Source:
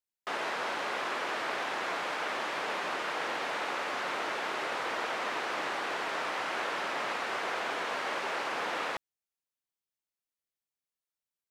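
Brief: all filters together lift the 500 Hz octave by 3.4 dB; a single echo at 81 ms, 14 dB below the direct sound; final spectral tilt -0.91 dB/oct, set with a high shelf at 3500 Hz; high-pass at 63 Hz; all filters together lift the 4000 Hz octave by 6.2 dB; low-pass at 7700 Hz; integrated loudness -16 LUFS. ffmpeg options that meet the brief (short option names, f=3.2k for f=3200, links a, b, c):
-af "highpass=63,lowpass=7.7k,equalizer=f=500:t=o:g=4,highshelf=f=3.5k:g=5,equalizer=f=4k:t=o:g=5,aecho=1:1:81:0.2,volume=14.5dB"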